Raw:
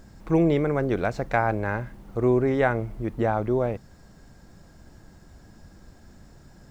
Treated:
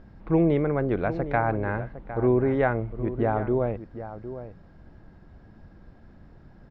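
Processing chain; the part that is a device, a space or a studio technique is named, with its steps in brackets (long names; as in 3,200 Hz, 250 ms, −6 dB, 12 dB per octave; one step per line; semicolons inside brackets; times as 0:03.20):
shout across a valley (high-frequency loss of the air 340 metres; slap from a distant wall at 130 metres, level −12 dB)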